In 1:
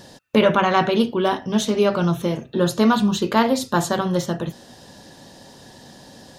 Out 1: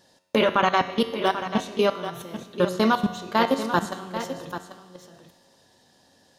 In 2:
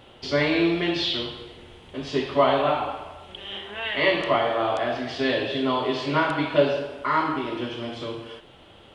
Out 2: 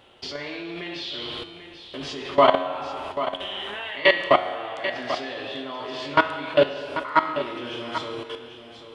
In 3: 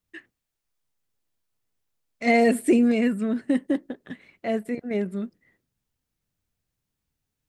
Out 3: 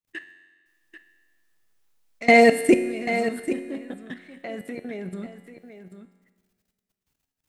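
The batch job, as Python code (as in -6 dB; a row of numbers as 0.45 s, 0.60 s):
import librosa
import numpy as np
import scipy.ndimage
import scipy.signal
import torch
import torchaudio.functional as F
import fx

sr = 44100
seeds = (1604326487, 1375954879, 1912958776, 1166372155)

p1 = fx.low_shelf(x, sr, hz=310.0, db=-7.5)
p2 = fx.level_steps(p1, sr, step_db=21)
p3 = fx.comb_fb(p2, sr, f0_hz=91.0, decay_s=1.3, harmonics='all', damping=0.0, mix_pct=70)
p4 = p3 + fx.echo_single(p3, sr, ms=789, db=-11.0, dry=0)
p5 = fx.rev_spring(p4, sr, rt60_s=1.8, pass_ms=(41,), chirp_ms=55, drr_db=19.5)
y = p5 * 10.0 ** (-26 / 20.0) / np.sqrt(np.mean(np.square(p5)))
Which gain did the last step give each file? +12.0 dB, +17.5 dB, +18.0 dB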